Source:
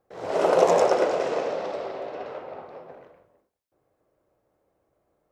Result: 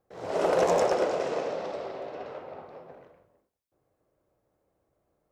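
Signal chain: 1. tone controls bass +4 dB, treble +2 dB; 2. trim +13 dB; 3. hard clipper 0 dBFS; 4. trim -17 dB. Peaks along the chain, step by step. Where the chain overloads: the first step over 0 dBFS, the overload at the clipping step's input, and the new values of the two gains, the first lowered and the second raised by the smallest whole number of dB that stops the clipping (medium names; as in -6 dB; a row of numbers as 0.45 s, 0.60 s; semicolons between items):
-3.0 dBFS, +10.0 dBFS, 0.0 dBFS, -17.0 dBFS; step 2, 10.0 dB; step 2 +3 dB, step 4 -7 dB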